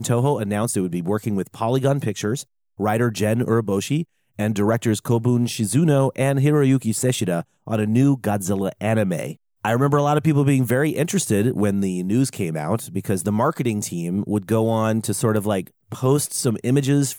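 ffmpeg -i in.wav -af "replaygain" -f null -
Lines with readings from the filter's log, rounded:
track_gain = +2.3 dB
track_peak = 0.325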